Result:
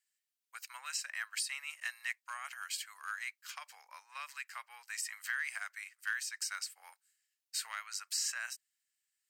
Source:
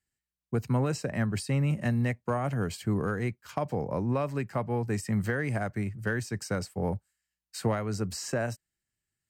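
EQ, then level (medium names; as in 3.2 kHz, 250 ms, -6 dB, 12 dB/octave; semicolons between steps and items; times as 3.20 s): Bessel high-pass 2.1 kHz, order 6; +3.5 dB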